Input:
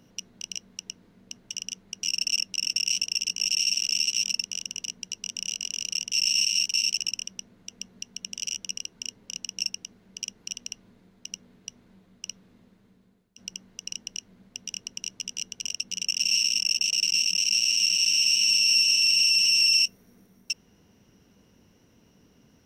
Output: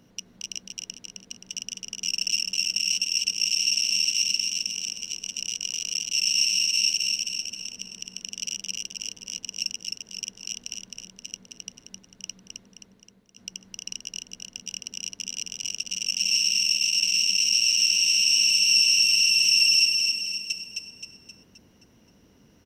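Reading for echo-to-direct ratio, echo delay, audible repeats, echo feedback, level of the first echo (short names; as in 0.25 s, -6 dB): -3.0 dB, 0.263 s, 5, 48%, -4.0 dB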